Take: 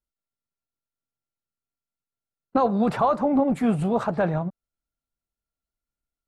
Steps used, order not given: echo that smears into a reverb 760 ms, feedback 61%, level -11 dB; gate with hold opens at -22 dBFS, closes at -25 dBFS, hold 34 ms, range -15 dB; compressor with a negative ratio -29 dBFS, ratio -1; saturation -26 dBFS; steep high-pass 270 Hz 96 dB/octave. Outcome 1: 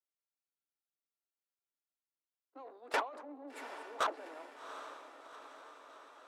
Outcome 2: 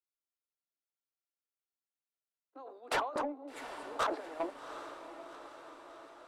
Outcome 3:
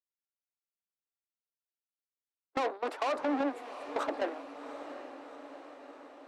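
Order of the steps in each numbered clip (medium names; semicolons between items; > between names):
compressor with a negative ratio > saturation > steep high-pass > gate with hold > echo that smears into a reverb; compressor with a negative ratio > steep high-pass > gate with hold > saturation > echo that smears into a reverb; saturation > steep high-pass > gate with hold > compressor with a negative ratio > echo that smears into a reverb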